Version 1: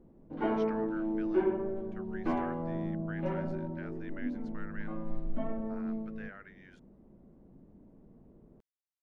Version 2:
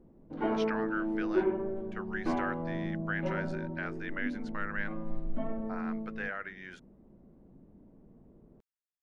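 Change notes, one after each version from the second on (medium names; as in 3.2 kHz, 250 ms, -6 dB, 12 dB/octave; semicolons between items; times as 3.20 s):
speech +11.5 dB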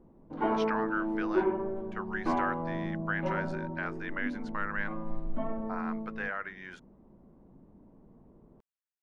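master: add peaking EQ 1 kHz +7.5 dB 0.76 oct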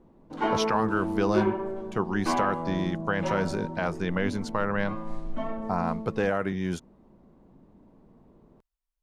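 speech: remove band-pass filter 1.7 kHz, Q 2.3; background: remove tape spacing loss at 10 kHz 38 dB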